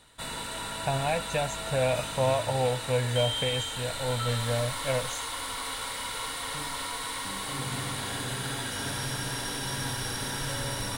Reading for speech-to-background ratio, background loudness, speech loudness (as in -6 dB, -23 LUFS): 2.5 dB, -32.5 LUFS, -30.0 LUFS